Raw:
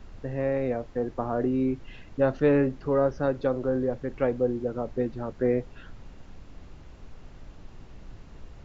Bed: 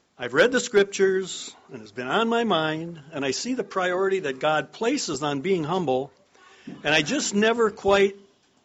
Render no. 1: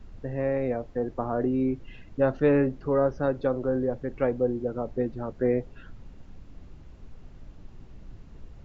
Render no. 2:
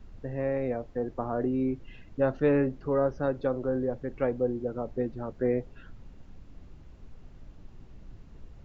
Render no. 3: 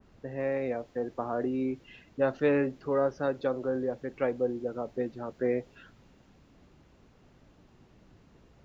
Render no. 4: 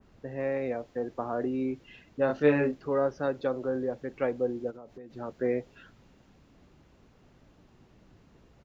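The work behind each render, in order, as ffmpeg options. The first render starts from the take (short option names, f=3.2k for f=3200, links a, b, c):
-af "afftdn=nr=6:nf=-48"
-af "volume=-2.5dB"
-af "highpass=f=240:p=1,adynamicequalizer=threshold=0.00447:dfrequency=2000:dqfactor=0.7:tfrequency=2000:tqfactor=0.7:attack=5:release=100:ratio=0.375:range=3:mode=boostabove:tftype=highshelf"
-filter_complex "[0:a]asplit=3[a][b][c];[a]afade=t=out:st=2.28:d=0.02[d];[b]asplit=2[e][f];[f]adelay=27,volume=-2dB[g];[e][g]amix=inputs=2:normalize=0,afade=t=in:st=2.28:d=0.02,afade=t=out:st=2.74:d=0.02[h];[c]afade=t=in:st=2.74:d=0.02[i];[d][h][i]amix=inputs=3:normalize=0,asplit=3[j][k][l];[j]afade=t=out:st=4.7:d=0.02[m];[k]acompressor=threshold=-43dB:ratio=6:attack=3.2:release=140:knee=1:detection=peak,afade=t=in:st=4.7:d=0.02,afade=t=out:st=5.1:d=0.02[n];[l]afade=t=in:st=5.1:d=0.02[o];[m][n][o]amix=inputs=3:normalize=0"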